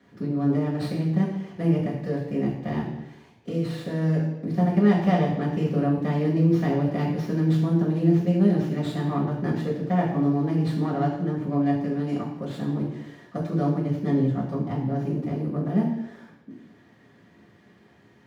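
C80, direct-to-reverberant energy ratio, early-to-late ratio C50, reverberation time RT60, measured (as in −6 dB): 7.5 dB, −7.5 dB, 4.5 dB, 0.85 s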